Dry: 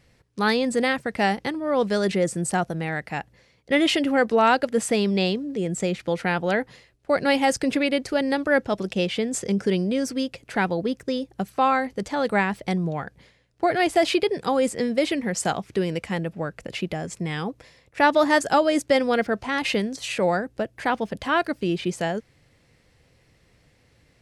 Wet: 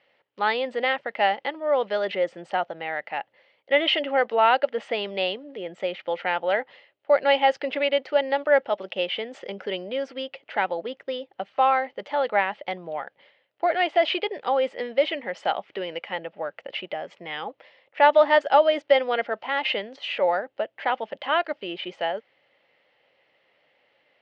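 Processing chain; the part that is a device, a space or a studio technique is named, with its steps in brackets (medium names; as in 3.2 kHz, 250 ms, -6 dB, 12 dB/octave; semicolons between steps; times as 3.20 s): phone earpiece (cabinet simulation 400–3900 Hz, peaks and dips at 580 Hz +10 dB, 840 Hz +8 dB, 1.3 kHz +4 dB, 2 kHz +6 dB, 3 kHz +10 dB); trim -6 dB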